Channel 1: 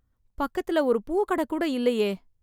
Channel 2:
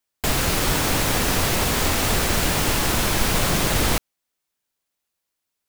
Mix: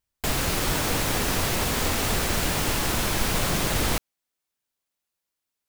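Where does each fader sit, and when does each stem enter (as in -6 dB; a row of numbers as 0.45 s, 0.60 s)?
-18.5 dB, -4.0 dB; 0.00 s, 0.00 s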